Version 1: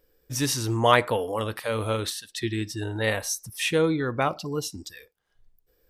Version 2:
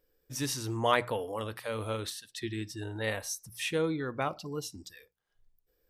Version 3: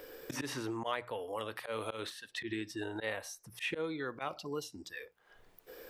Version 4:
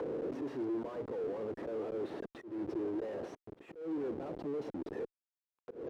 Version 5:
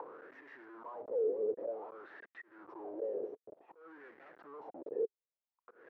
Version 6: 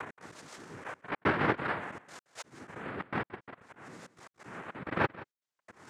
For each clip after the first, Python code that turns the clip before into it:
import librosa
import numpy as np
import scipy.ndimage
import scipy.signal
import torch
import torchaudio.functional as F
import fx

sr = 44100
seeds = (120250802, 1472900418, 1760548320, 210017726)

y1 = fx.hum_notches(x, sr, base_hz=60, count=3)
y1 = F.gain(torch.from_numpy(y1), -7.5).numpy()
y2 = fx.bass_treble(y1, sr, bass_db=-11, treble_db=-7)
y2 = fx.auto_swell(y2, sr, attack_ms=113.0)
y2 = fx.band_squash(y2, sr, depth_pct=100)
y2 = F.gain(torch.from_numpy(y2), -1.5).numpy()
y3 = fx.schmitt(y2, sr, flips_db=-48.0)
y3 = fx.auto_wah(y3, sr, base_hz=370.0, top_hz=1200.0, q=2.3, full_db=-42.0, direction='down')
y3 = fx.auto_swell(y3, sr, attack_ms=213.0)
y3 = F.gain(torch.from_numpy(y3), 9.0).numpy()
y4 = fx.wah_lfo(y3, sr, hz=0.54, low_hz=430.0, high_hz=1900.0, q=5.9)
y4 = F.gain(torch.from_numpy(y4), 8.0).numpy()
y5 = fx.noise_vocoder(y4, sr, seeds[0], bands=3)
y5 = fx.step_gate(y5, sr, bpm=144, pattern='x.xxxxxxx.', floor_db=-60.0, edge_ms=4.5)
y5 = y5 + 10.0 ** (-18.0 / 20.0) * np.pad(y5, (int(174 * sr / 1000.0), 0))[:len(y5)]
y5 = F.gain(torch.from_numpy(y5), 6.0).numpy()